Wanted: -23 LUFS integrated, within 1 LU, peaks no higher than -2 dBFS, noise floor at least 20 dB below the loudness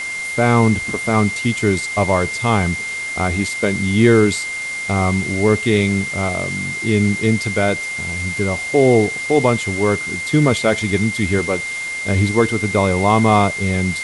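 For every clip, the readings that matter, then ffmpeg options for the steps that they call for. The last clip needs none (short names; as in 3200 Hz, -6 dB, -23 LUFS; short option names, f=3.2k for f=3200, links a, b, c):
steady tone 2100 Hz; tone level -23 dBFS; noise floor -26 dBFS; noise floor target -38 dBFS; loudness -17.5 LUFS; peak -2.0 dBFS; loudness target -23.0 LUFS
-> -af "bandreject=f=2.1k:w=30"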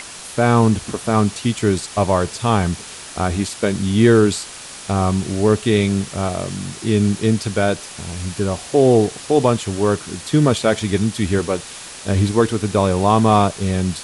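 steady tone none; noise floor -35 dBFS; noise floor target -39 dBFS
-> -af "afftdn=nr=6:nf=-35"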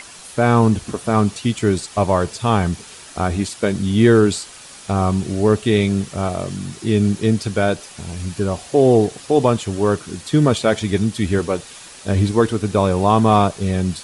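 noise floor -40 dBFS; loudness -18.5 LUFS; peak -2.5 dBFS; loudness target -23.0 LUFS
-> -af "volume=-4.5dB"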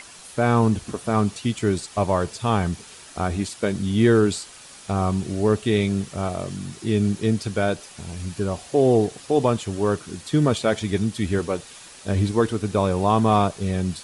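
loudness -23.0 LUFS; peak -7.0 dBFS; noise floor -44 dBFS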